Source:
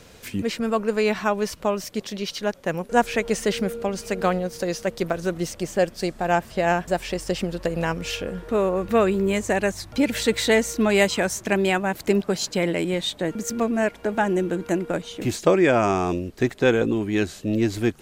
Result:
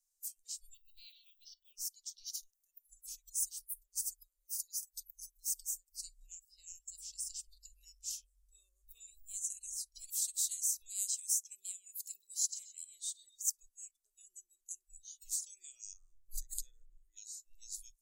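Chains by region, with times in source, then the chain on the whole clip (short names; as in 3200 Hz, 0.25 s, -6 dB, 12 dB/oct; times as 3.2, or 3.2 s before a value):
0.74–1.73 synth low-pass 3300 Hz, resonance Q 3.6 + companded quantiser 8-bit + resonator 100 Hz, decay 0.3 s, mix 40%
2.33–5.97 compressor 10:1, threshold -28 dBFS + high shelf 11000 Hz +11.5 dB
11.38–13.42 HPF 190 Hz 6 dB/oct + low shelf 270 Hz +9.5 dB + feedback echo 0.13 s, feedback 51%, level -14 dB
15.93–17.17 resonant high shelf 2100 Hz -8.5 dB, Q 3 + notch 5500 Hz, Q 7.7 + backwards sustainer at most 60 dB/s
whole clip: inverse Chebyshev band-stop 110–1700 Hz, stop band 70 dB; spectral noise reduction 24 dB; low shelf 340 Hz -8.5 dB; gain +1 dB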